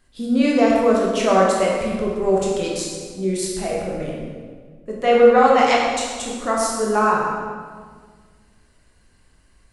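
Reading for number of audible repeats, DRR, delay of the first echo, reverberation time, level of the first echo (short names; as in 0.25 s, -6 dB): none, -3.5 dB, none, 1.7 s, none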